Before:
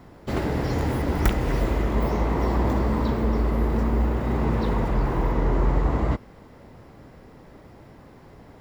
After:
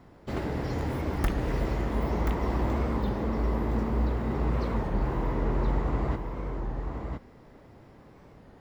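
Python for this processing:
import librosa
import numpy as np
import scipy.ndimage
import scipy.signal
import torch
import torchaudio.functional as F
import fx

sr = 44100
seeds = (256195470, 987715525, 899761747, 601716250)

p1 = fx.high_shelf(x, sr, hz=8200.0, db=-5.5)
p2 = p1 + fx.echo_single(p1, sr, ms=1016, db=-6.0, dry=0)
p3 = fx.record_warp(p2, sr, rpm=33.33, depth_cents=160.0)
y = p3 * librosa.db_to_amplitude(-6.0)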